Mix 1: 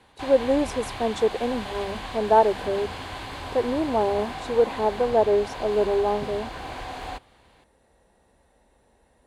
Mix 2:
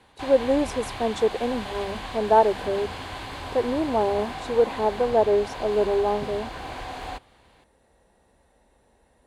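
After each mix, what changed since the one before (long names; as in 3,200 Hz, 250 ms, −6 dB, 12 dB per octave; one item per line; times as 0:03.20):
nothing changed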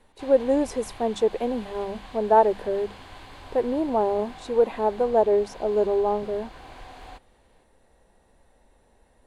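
background −9.5 dB
master: remove high-pass filter 44 Hz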